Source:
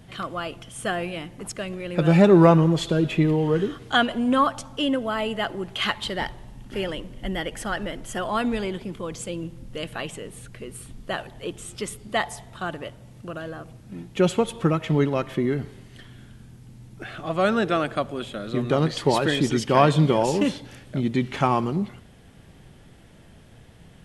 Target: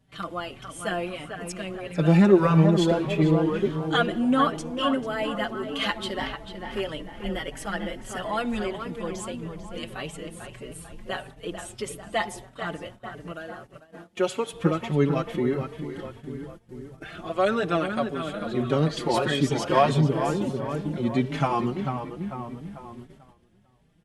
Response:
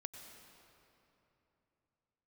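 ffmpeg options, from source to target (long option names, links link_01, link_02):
-filter_complex "[0:a]asettb=1/sr,asplit=3[link_01][link_02][link_03];[link_01]atrim=end=13.324[link_04];[link_02]atrim=start=13.32:end=14.53,asetpts=PTS-STARTPTS,afade=type=in:duration=0.004:curve=qsin,afade=type=out:start_time=1.206:duration=0.004:curve=qsin,highpass=frequency=480:poles=1[link_05];[link_03]atrim=start=14.526[link_06];[link_04][link_05]acrossfade=duration=0.004:curve1=hsin:curve2=qsin[link_07];[link_07][link_06]acrossfade=duration=0.004:curve1=qsin:curve2=hsin,asettb=1/sr,asplit=3[link_08][link_09][link_10];[link_08]atrim=end=20.004[link_11];[link_09]atrim=start=20:end=20.69,asetpts=PTS-STARTPTS,afade=type=in:duration=0.004:curve=qsin,afade=type=out:start_time=0.686:duration=0.004:curve=qsin,equalizer=frequency=2200:width=0.43:gain=-14.5[link_12];[link_10]atrim=start=20.686[link_13];[link_11][link_12]acrossfade=duration=0.004:curve1=hsin:curve2=qsin[link_14];[link_14][link_13]acrossfade=duration=0.004:curve1=qsin:curve2=hsin,asplit=2[link_15][link_16];[link_16]adelay=444,lowpass=frequency=2600:poles=1,volume=-6.5dB,asplit=2[link_17][link_18];[link_18]adelay=444,lowpass=frequency=2600:poles=1,volume=0.53,asplit=2[link_19][link_20];[link_20]adelay=444,lowpass=frequency=2600:poles=1,volume=0.53,asplit=2[link_21][link_22];[link_22]adelay=444,lowpass=frequency=2600:poles=1,volume=0.53,asplit=2[link_23][link_24];[link_24]adelay=444,lowpass=frequency=2600:poles=1,volume=0.53,asplit=2[link_25][link_26];[link_26]adelay=444,lowpass=frequency=2600:poles=1,volume=0.53,asplit=2[link_27][link_28];[link_28]adelay=444,lowpass=frequency=2600:poles=1,volume=0.53[link_29];[link_15][link_17][link_19][link_21][link_23][link_25][link_27][link_29]amix=inputs=8:normalize=0,agate=range=-14dB:threshold=-40dB:ratio=16:detection=peak,asplit=2[link_30][link_31];[link_31]adelay=4.8,afreqshift=1.6[link_32];[link_30][link_32]amix=inputs=2:normalize=1"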